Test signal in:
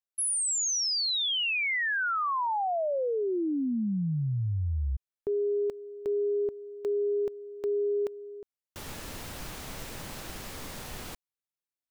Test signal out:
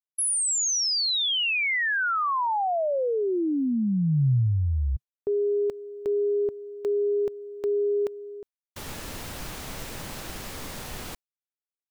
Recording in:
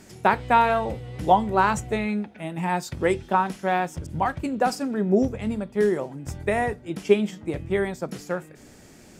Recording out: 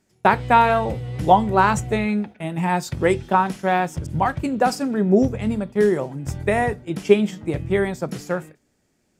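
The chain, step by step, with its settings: dynamic bell 130 Hz, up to +5 dB, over -44 dBFS, Q 2.1; gate with hold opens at -32 dBFS, closes at -42 dBFS, hold 26 ms, range -22 dB; trim +3.5 dB

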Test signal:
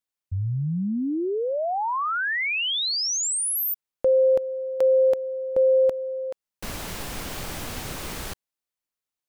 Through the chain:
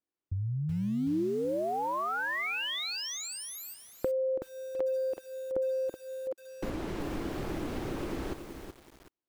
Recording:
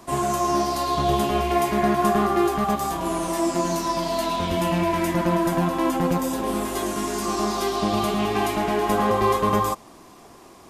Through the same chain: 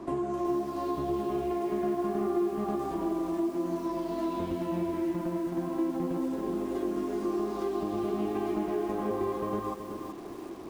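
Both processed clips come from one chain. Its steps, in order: low-pass 1.3 kHz 6 dB/octave; peaking EQ 330 Hz +12.5 dB 0.72 oct; compression 4:1, threshold -32 dBFS; bit-crushed delay 375 ms, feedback 35%, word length 8-bit, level -7 dB

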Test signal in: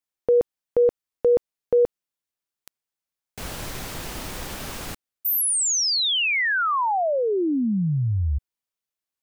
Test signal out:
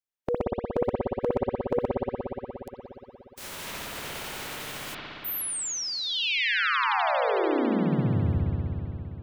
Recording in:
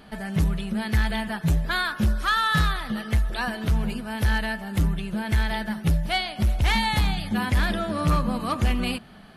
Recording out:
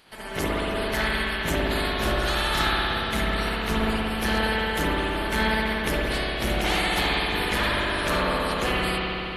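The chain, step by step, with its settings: spectral peaks clipped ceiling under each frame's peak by 23 dB; spring tank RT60 3.5 s, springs 59 ms, chirp 35 ms, DRR -6.5 dB; trim -8 dB

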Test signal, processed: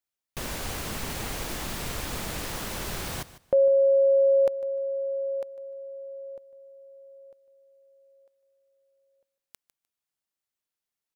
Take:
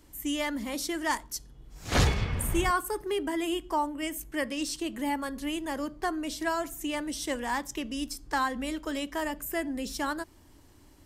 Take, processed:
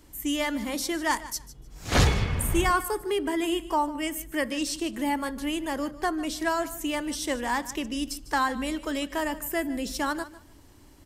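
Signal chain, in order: feedback delay 151 ms, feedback 19%, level -16.5 dB; trim +3 dB

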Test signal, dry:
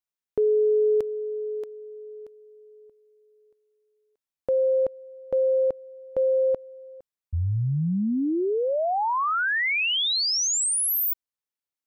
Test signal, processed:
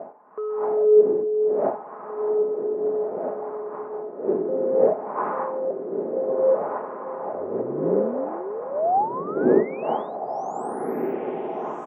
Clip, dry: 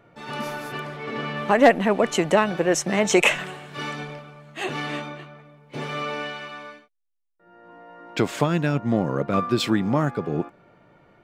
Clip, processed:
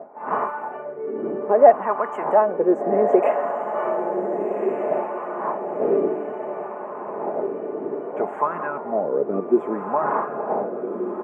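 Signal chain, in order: wind noise 460 Hz -28 dBFS; high-pass 190 Hz 12 dB/octave; comb 4.8 ms, depth 37%; in parallel at -8.5 dB: hard clipper -19 dBFS; on the sum: wah-wah 0.61 Hz 350–1100 Hz, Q 3.5; Butterworth band-stop 4.4 kHz, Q 0.63; on a send: echo that smears into a reverb 1538 ms, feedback 43%, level -6 dB; on the sum: trim +5.5 dB

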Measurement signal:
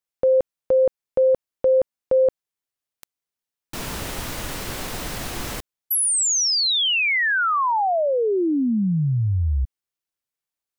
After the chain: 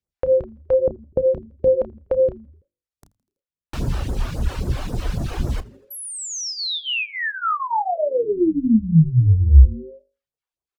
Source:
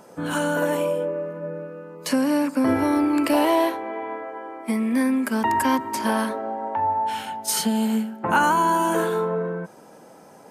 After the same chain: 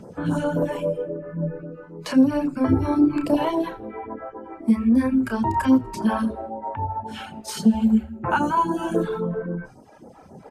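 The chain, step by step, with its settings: high-pass 47 Hz 12 dB/octave; doubling 31 ms -8.5 dB; reverb removal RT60 1.2 s; in parallel at -0.5 dB: compression, threshold -34 dBFS; on the sum: hum notches 50/100/150/200/250/300 Hz; phase shifter stages 2, 3.7 Hz, lowest notch 130–2700 Hz; RIAA curve playback; on a send: frequency-shifting echo 82 ms, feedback 60%, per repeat -150 Hz, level -23 dB; on the sum: dynamic bell 2 kHz, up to -6 dB, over -52 dBFS, Q 6.3; trim -1 dB

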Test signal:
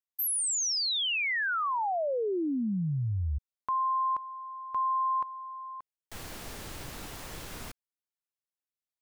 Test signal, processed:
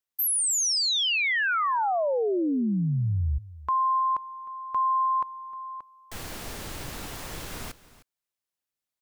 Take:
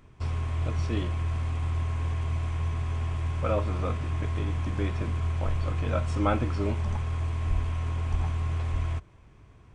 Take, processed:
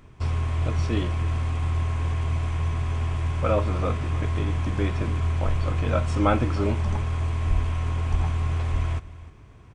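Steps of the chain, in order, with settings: delay 308 ms -18 dB; trim +4.5 dB

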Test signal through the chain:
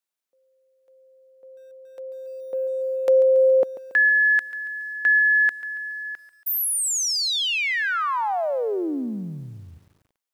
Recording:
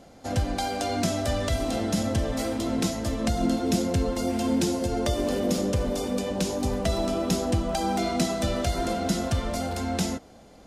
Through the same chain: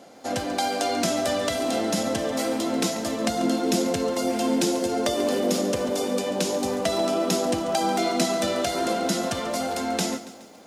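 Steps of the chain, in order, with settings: high-pass 260 Hz 12 dB/octave; bit-crushed delay 140 ms, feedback 55%, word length 9-bit, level -14.5 dB; trim +4 dB

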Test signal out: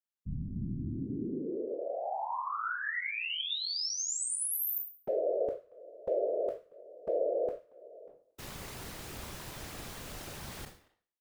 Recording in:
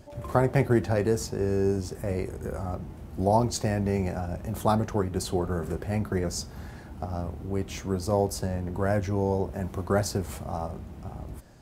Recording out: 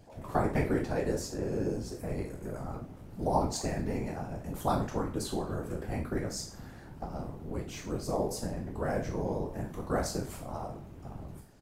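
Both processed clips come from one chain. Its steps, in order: spectral sustain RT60 0.43 s; speakerphone echo 230 ms, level -21 dB; whisper effect; trim -7 dB

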